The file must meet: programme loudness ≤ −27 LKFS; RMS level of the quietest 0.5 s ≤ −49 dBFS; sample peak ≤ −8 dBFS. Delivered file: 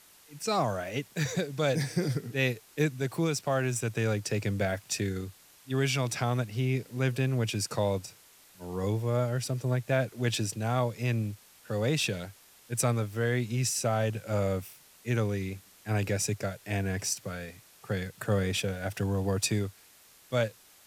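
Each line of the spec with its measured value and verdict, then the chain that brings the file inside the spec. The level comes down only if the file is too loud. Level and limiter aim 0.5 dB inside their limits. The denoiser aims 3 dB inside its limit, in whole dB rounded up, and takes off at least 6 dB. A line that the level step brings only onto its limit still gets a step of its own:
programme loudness −30.5 LKFS: in spec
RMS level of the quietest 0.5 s −58 dBFS: in spec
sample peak −14.5 dBFS: in spec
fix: no processing needed

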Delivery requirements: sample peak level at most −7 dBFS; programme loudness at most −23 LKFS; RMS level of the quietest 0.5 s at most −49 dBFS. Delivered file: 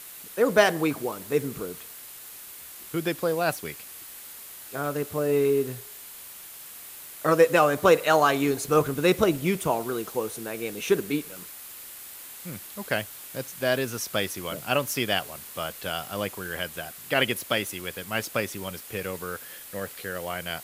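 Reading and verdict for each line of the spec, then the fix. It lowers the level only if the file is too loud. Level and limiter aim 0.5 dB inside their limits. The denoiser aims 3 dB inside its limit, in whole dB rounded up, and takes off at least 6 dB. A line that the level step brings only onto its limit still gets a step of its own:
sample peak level −6.0 dBFS: out of spec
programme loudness −26.5 LKFS: in spec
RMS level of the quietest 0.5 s −43 dBFS: out of spec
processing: broadband denoise 9 dB, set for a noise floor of −43 dBFS
brickwall limiter −7.5 dBFS

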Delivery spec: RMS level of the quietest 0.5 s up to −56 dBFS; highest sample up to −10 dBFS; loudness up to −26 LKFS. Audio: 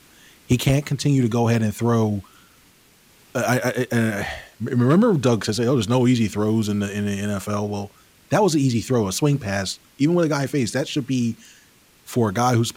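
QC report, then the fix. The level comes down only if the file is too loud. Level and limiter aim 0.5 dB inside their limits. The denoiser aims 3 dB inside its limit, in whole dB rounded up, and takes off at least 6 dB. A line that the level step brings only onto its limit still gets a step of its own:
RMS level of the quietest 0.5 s −54 dBFS: out of spec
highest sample −4.5 dBFS: out of spec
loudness −21.5 LKFS: out of spec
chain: level −5 dB
brickwall limiter −10.5 dBFS

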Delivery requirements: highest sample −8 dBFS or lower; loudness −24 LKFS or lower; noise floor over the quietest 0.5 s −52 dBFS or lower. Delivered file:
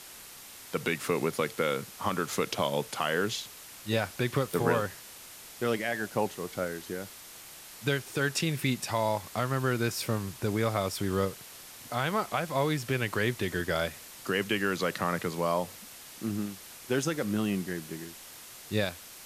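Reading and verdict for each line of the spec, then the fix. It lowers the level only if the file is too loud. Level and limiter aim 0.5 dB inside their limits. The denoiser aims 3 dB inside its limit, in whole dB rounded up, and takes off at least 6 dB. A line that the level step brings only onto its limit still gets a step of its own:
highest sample −12.5 dBFS: in spec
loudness −31.0 LKFS: in spec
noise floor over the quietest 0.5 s −48 dBFS: out of spec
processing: broadband denoise 7 dB, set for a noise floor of −48 dBFS

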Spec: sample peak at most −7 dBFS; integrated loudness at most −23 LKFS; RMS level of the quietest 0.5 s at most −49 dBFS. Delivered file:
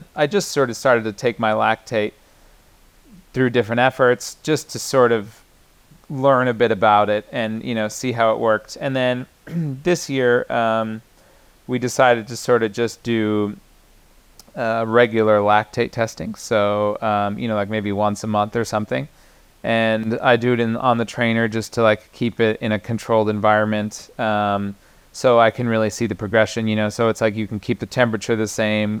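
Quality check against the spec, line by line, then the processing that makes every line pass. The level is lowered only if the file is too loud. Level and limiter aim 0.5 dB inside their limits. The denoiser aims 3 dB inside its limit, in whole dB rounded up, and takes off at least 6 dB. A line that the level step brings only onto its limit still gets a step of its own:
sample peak −2.5 dBFS: out of spec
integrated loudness −19.5 LKFS: out of spec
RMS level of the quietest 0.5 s −53 dBFS: in spec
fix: level −4 dB
brickwall limiter −7.5 dBFS

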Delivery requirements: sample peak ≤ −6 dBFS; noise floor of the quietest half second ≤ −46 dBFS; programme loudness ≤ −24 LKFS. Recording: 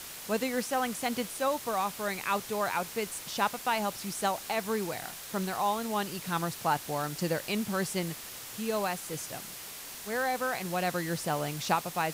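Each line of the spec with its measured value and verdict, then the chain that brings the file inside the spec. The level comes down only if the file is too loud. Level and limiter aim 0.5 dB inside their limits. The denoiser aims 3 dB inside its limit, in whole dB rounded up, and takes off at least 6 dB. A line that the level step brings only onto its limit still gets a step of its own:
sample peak −14.5 dBFS: in spec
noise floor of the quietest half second −43 dBFS: out of spec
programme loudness −32.0 LKFS: in spec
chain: broadband denoise 6 dB, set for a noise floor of −43 dBFS

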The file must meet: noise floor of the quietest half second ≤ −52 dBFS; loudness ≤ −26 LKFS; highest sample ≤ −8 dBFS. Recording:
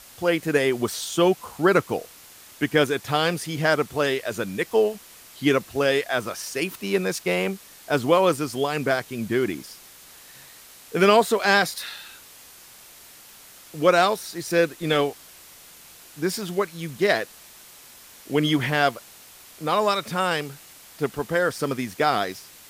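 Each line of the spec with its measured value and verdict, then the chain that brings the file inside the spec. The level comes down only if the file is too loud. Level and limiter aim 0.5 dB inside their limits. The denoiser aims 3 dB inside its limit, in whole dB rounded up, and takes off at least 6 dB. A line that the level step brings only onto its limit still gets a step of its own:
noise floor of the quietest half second −48 dBFS: out of spec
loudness −23.5 LKFS: out of spec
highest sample −5.0 dBFS: out of spec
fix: broadband denoise 6 dB, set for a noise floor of −48 dBFS
level −3 dB
brickwall limiter −8.5 dBFS

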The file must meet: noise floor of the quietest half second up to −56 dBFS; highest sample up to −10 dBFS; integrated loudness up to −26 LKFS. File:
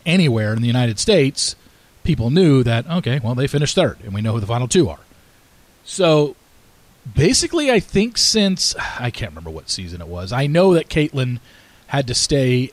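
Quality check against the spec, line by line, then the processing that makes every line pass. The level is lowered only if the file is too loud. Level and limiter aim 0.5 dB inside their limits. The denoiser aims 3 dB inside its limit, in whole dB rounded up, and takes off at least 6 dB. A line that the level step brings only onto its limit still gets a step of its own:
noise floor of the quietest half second −51 dBFS: out of spec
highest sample −4.5 dBFS: out of spec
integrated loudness −17.5 LKFS: out of spec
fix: level −9 dB

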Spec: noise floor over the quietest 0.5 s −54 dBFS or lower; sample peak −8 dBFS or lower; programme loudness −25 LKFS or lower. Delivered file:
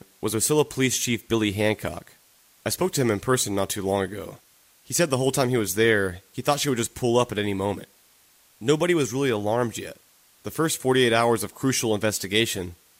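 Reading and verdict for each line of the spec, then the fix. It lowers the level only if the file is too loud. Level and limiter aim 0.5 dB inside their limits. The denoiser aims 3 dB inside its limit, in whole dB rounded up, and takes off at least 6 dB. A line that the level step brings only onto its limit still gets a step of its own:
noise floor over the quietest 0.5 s −58 dBFS: in spec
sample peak −7.0 dBFS: out of spec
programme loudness −24.0 LKFS: out of spec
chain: level −1.5 dB

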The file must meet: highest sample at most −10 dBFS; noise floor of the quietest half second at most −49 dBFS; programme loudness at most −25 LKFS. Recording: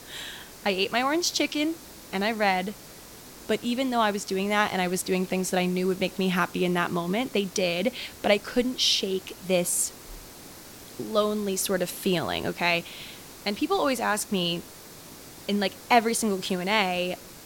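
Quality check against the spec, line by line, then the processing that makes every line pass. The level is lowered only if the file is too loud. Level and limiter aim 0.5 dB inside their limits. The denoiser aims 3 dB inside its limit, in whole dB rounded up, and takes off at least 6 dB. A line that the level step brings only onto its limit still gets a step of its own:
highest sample −8.0 dBFS: out of spec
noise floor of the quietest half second −46 dBFS: out of spec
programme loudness −26.0 LKFS: in spec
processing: broadband denoise 6 dB, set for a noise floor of −46 dBFS
brickwall limiter −10.5 dBFS

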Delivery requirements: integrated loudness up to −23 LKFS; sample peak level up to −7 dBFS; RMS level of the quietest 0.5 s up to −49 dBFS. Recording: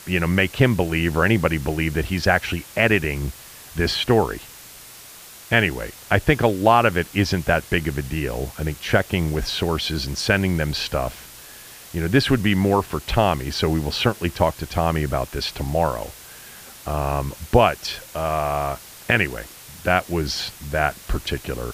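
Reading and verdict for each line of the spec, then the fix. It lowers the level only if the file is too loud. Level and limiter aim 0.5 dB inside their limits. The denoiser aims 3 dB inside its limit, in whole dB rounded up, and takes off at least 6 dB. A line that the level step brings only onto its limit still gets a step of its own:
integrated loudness −21.5 LKFS: out of spec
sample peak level −2.5 dBFS: out of spec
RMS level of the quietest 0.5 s −42 dBFS: out of spec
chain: broadband denoise 8 dB, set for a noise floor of −42 dBFS
level −2 dB
brickwall limiter −7.5 dBFS

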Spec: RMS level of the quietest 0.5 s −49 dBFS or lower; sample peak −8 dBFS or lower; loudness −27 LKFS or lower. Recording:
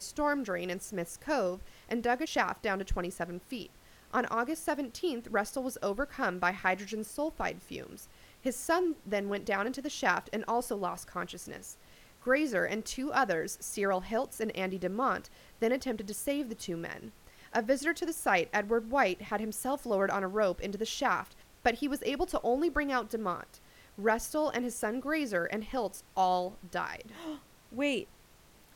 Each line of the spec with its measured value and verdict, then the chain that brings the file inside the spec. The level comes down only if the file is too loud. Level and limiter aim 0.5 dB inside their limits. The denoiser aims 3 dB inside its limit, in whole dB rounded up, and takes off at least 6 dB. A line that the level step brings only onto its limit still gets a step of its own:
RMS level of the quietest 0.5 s −59 dBFS: in spec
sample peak −12.5 dBFS: in spec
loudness −33.0 LKFS: in spec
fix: no processing needed

